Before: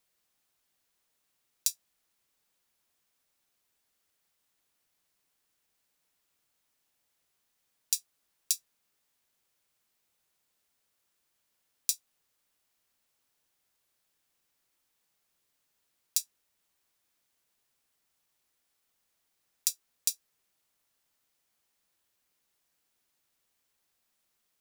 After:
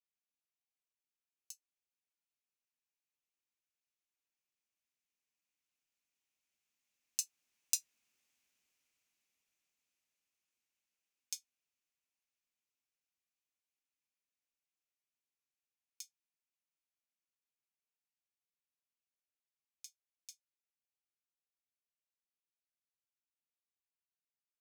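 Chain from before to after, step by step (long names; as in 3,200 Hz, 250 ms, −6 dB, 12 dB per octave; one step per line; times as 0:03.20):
source passing by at 0:08.14, 33 m/s, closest 27 metres
graphic EQ with 15 bands 250 Hz +6 dB, 2,500 Hz +11 dB, 6,300 Hz +8 dB
level −7.5 dB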